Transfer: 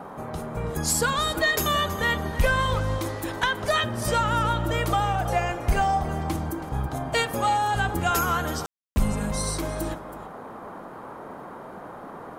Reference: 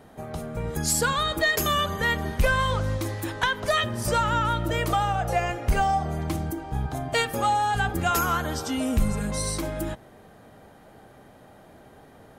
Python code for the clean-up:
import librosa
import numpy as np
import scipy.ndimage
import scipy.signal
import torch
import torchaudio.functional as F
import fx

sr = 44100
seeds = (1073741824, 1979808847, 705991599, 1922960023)

y = fx.fix_declick_ar(x, sr, threshold=6.5)
y = fx.fix_ambience(y, sr, seeds[0], print_start_s=11.53, print_end_s=12.03, start_s=8.66, end_s=8.96)
y = fx.noise_reduce(y, sr, print_start_s=11.53, print_end_s=12.03, reduce_db=10.0)
y = fx.fix_echo_inverse(y, sr, delay_ms=325, level_db=-14.5)